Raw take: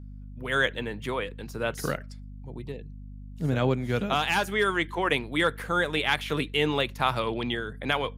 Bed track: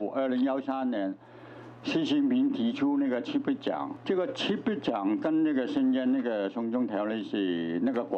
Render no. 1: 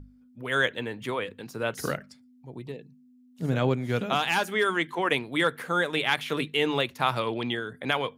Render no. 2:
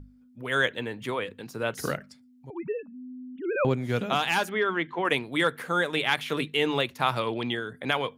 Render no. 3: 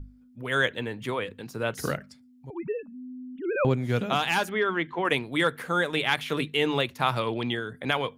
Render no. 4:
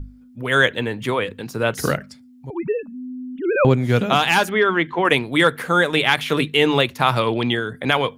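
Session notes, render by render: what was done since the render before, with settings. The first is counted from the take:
hum notches 50/100/150/200 Hz
2.50–3.65 s: formants replaced by sine waves; 4.49–5.05 s: distance through air 230 m
bass shelf 91 Hz +8.5 dB
trim +8.5 dB; peak limiter -2 dBFS, peak gain reduction 2 dB

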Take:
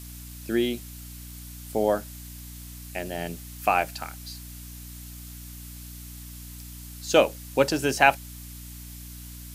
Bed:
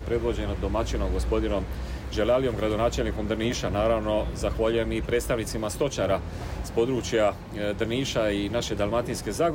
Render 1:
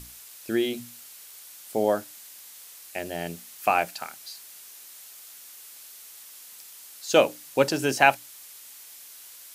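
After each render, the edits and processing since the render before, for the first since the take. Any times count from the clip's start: hum notches 60/120/180/240/300 Hz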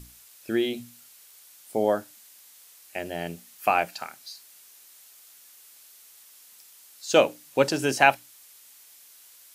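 noise print and reduce 6 dB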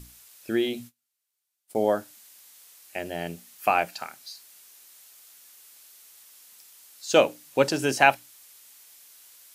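0.67–1.88 s: gate -48 dBFS, range -30 dB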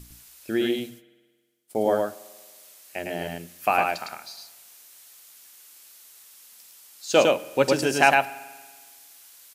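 delay 107 ms -3 dB; spring tank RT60 1.5 s, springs 46 ms, chirp 40 ms, DRR 18 dB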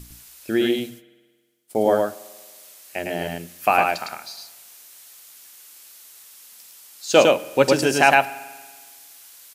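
trim +4 dB; peak limiter -1 dBFS, peak gain reduction 2.5 dB

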